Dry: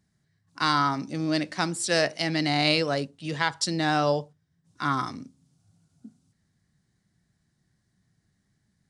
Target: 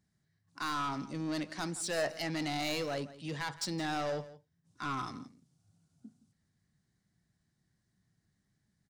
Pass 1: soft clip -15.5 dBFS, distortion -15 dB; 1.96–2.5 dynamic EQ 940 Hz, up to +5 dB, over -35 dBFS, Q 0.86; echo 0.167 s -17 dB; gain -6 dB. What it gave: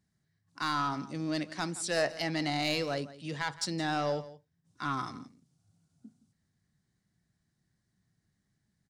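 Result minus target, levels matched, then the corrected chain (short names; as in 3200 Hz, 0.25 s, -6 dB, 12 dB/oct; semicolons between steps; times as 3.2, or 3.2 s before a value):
soft clip: distortion -8 dB
soft clip -24 dBFS, distortion -8 dB; 1.96–2.5 dynamic EQ 940 Hz, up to +5 dB, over -35 dBFS, Q 0.86; echo 0.167 s -17 dB; gain -6 dB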